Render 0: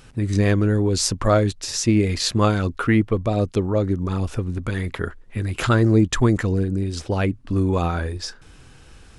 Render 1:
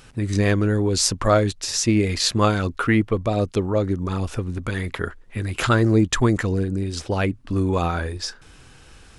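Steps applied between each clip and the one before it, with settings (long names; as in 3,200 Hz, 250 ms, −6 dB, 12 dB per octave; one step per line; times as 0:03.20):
low-shelf EQ 470 Hz −4 dB
level +2 dB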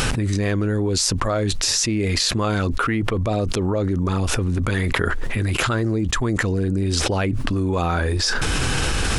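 envelope flattener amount 100%
level −7 dB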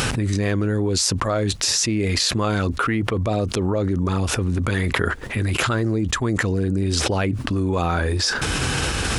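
high-pass filter 53 Hz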